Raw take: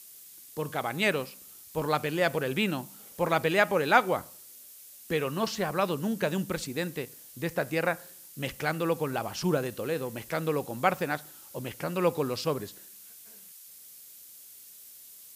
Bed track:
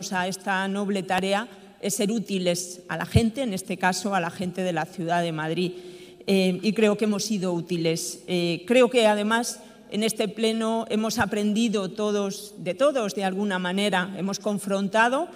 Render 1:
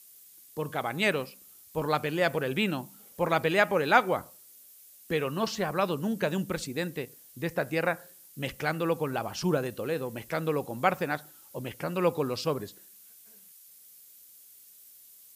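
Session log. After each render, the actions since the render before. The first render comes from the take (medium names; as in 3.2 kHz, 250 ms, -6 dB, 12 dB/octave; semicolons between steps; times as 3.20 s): noise reduction 6 dB, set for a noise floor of -50 dBFS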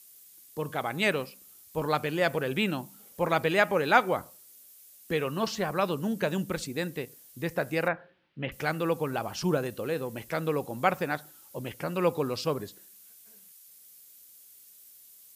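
7.88–8.52 s: inverse Chebyshev low-pass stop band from 7.2 kHz, stop band 50 dB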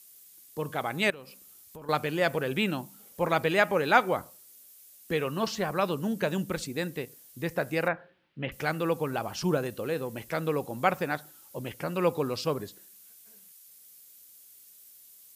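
1.10–1.89 s: compression, threshold -42 dBFS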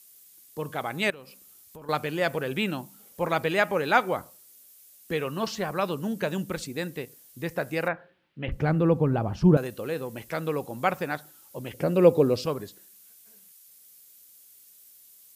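8.48–9.57 s: tilt EQ -4.5 dB/octave; 11.73–12.46 s: resonant low shelf 730 Hz +7.5 dB, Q 1.5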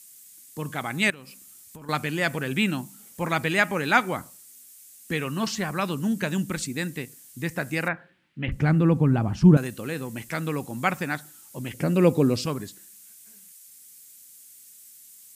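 graphic EQ 125/250/500/2000/8000 Hz +4/+6/-6/+5/+9 dB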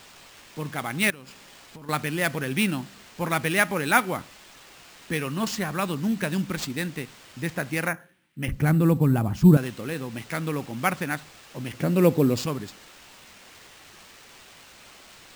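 sample-rate reducer 12 kHz, jitter 0%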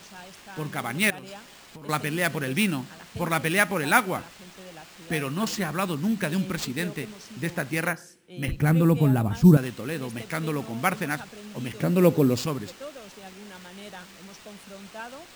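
add bed track -19 dB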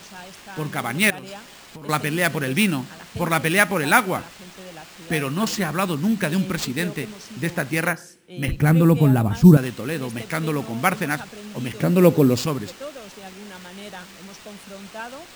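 trim +4.5 dB; peak limiter -2 dBFS, peak gain reduction 1.5 dB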